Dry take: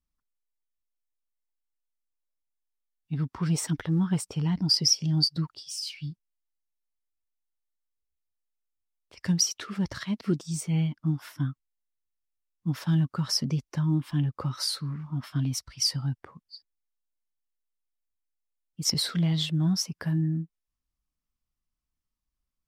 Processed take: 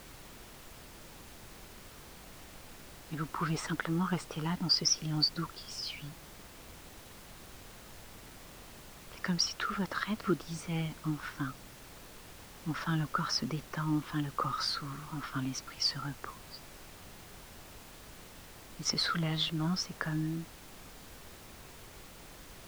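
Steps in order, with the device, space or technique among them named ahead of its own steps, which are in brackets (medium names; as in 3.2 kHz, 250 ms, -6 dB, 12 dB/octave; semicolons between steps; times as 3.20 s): horn gramophone (band-pass 270–4200 Hz; peaking EQ 1.3 kHz +10.5 dB 0.58 oct; wow and flutter; pink noise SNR 13 dB)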